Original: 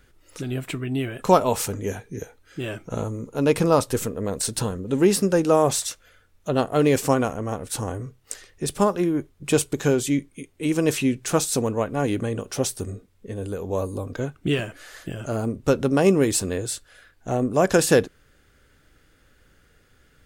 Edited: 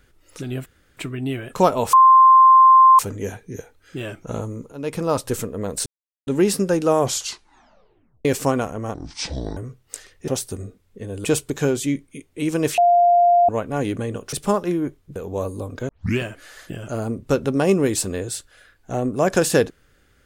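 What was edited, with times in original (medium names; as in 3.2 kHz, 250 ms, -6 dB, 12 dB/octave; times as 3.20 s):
0.66 s: insert room tone 0.31 s
1.62 s: add tone 1.05 kHz -7 dBFS 1.06 s
3.35–3.96 s: fade in, from -14 dB
4.49–4.90 s: mute
5.63 s: tape stop 1.25 s
7.57–7.94 s: speed 59%
8.65–9.48 s: swap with 12.56–13.53 s
11.01–11.72 s: bleep 699 Hz -11 dBFS
14.26 s: tape start 0.31 s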